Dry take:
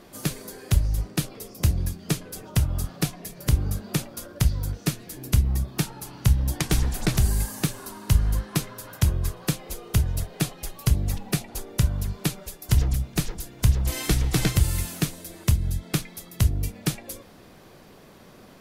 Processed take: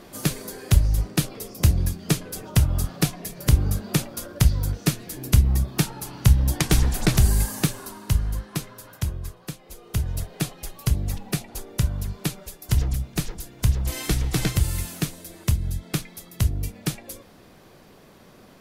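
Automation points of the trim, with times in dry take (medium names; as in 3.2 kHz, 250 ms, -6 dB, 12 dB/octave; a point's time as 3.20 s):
7.58 s +3.5 dB
8.31 s -3.5 dB
8.81 s -3.5 dB
9.58 s -10 dB
10.12 s -1 dB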